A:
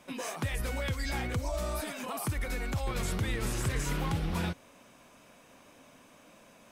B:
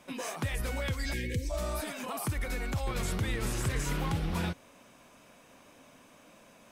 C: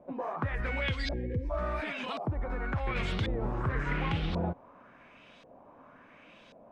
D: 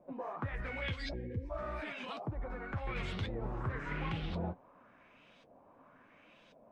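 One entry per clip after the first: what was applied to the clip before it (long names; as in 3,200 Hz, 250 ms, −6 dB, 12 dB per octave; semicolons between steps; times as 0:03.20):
gain on a spectral selection 0:01.13–0:01.50, 540–1,600 Hz −29 dB
auto-filter low-pass saw up 0.92 Hz 580–4,100 Hz
flanger 1.7 Hz, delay 5.3 ms, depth 6.1 ms, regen −45%; level −2.5 dB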